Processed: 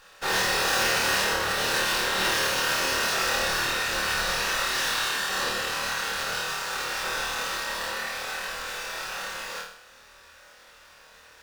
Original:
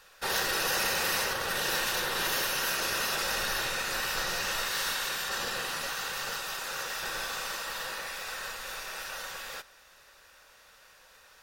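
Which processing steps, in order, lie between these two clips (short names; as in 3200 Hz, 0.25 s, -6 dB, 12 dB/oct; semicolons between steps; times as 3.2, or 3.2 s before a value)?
notches 50/100/150 Hz; flutter echo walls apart 4.5 m, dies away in 0.57 s; running maximum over 3 samples; gain +2.5 dB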